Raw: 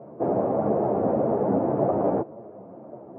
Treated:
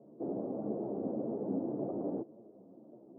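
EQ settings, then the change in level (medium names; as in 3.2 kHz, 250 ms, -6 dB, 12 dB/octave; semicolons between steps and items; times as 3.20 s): band-pass filter 280 Hz, Q 1.5; distance through air 360 m; -8.0 dB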